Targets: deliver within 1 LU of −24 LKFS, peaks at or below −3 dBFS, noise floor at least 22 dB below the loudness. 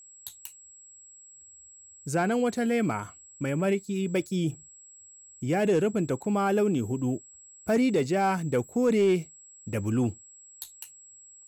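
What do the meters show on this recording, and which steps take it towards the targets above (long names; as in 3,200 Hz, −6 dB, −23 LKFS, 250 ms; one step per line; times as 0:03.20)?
share of clipped samples 0.2%; peaks flattened at −17.0 dBFS; interfering tone 7,700 Hz; level of the tone −49 dBFS; integrated loudness −27.0 LKFS; sample peak −17.0 dBFS; target loudness −24.0 LKFS
→ clipped peaks rebuilt −17 dBFS
notch filter 7,700 Hz, Q 30
level +3 dB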